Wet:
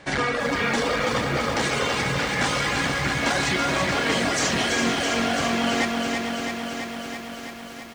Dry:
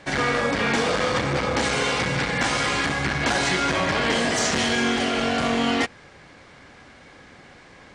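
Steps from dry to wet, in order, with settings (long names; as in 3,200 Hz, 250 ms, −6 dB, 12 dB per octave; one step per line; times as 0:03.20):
reverb reduction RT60 1.7 s
on a send: single-tap delay 443 ms −11 dB
on the sum: feedback echo at a low word length 331 ms, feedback 80%, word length 8 bits, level −5 dB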